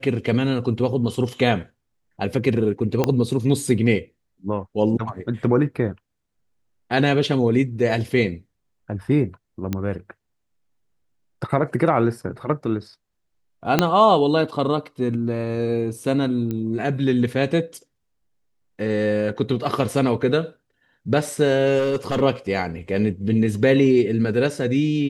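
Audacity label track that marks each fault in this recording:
3.040000	3.040000	pop -6 dBFS
9.730000	9.730000	pop -11 dBFS
13.790000	13.790000	pop -1 dBFS
16.510000	16.510000	pop -16 dBFS
21.780000	22.220000	clipped -17 dBFS

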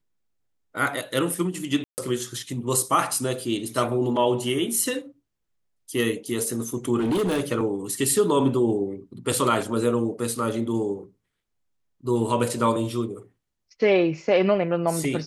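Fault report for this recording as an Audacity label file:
1.840000	1.980000	dropout 139 ms
7.000000	7.410000	clipped -20 dBFS

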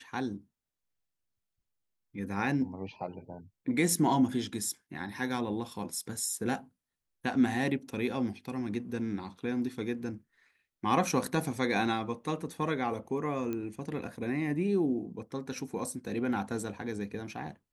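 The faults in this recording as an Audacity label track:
13.530000	13.530000	pop -23 dBFS

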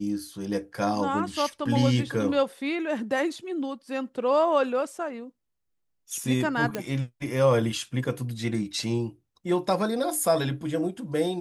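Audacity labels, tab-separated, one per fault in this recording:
6.750000	6.750000	pop -14 dBFS

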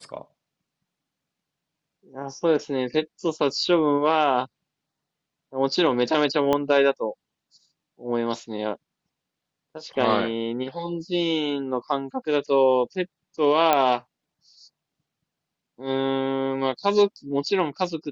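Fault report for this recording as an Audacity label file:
6.530000	6.530000	pop -10 dBFS
13.730000	13.730000	pop -6 dBFS

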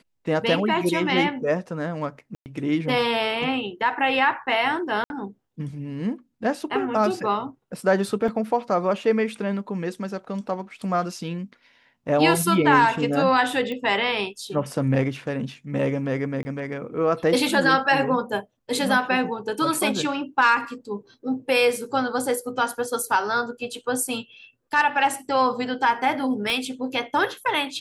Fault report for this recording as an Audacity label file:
2.350000	2.460000	dropout 109 ms
5.040000	5.100000	dropout 61 ms
8.280000	8.280000	dropout 3.4 ms
13.720000	13.720000	pop -19 dBFS
16.430000	16.450000	dropout 20 ms
26.500000	26.500000	pop -13 dBFS

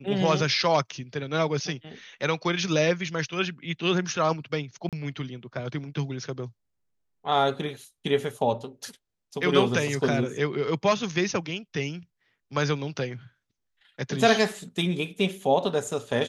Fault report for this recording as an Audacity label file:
4.890000	4.930000	dropout 37 ms

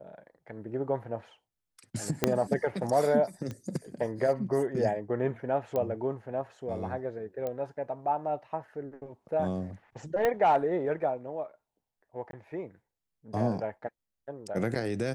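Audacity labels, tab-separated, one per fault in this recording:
2.240000	2.240000	pop -8 dBFS
3.510000	3.510000	pop -25 dBFS
5.760000	5.760000	pop -19 dBFS
7.470000	7.470000	pop -22 dBFS
10.250000	10.250000	pop -14 dBFS
12.310000	12.330000	dropout 22 ms

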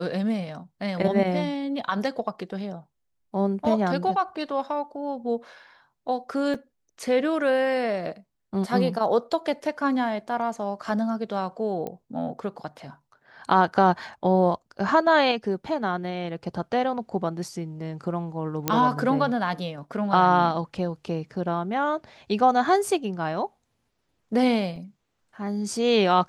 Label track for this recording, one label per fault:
6.540000	6.540000	dropout 4.9 ms
11.870000	11.870000	pop -21 dBFS
18.680000	18.680000	pop -6 dBFS
24.760000	24.760000	dropout 3 ms

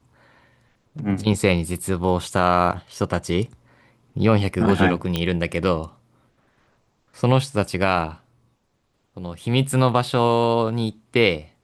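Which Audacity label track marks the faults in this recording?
5.160000	5.160000	pop -9 dBFS

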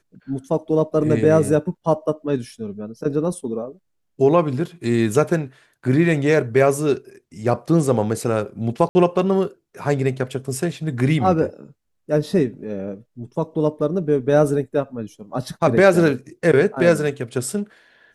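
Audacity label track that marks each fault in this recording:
8.890000	8.950000	dropout 60 ms

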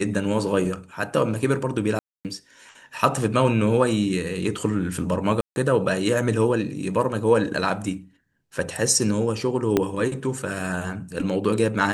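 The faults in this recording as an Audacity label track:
1.990000	2.250000	dropout 258 ms
5.410000	5.560000	dropout 151 ms
9.770000	9.770000	pop -6 dBFS

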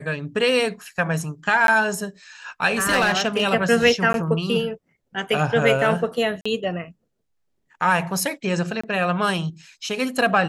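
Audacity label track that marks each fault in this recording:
1.670000	1.680000	dropout 12 ms
2.800000	3.440000	clipped -14 dBFS
4.130000	4.140000	dropout
6.410000	6.460000	dropout 45 ms
8.810000	8.840000	dropout 25 ms

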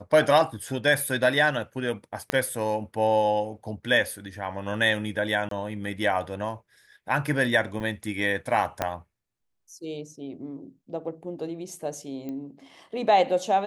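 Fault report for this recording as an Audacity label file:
2.300000	2.300000	pop -10 dBFS
5.490000	5.510000	dropout 23 ms
7.800000	7.800000	dropout 3 ms
8.820000	8.820000	pop -10 dBFS
12.290000	12.290000	pop -24 dBFS

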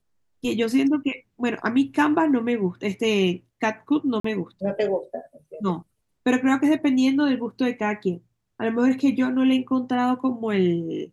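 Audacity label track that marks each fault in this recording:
4.200000	4.240000	dropout 44 ms

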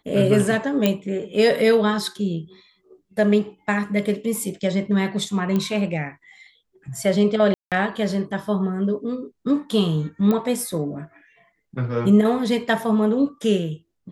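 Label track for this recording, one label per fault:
0.860000	0.860000	pop -5 dBFS
5.560000	5.560000	pop -12 dBFS
7.540000	7.720000	dropout 177 ms
10.310000	10.310000	pop -11 dBFS

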